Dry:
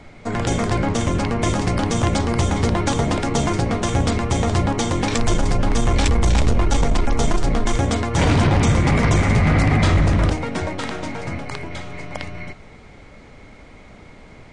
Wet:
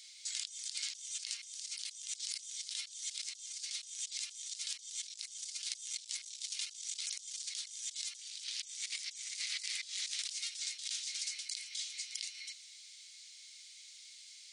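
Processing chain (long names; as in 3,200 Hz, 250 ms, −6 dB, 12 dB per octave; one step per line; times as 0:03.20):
inverse Chebyshev high-pass filter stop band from 720 Hz, stop band 80 dB
compressor whose output falls as the input rises −47 dBFS, ratio −1
level +2.5 dB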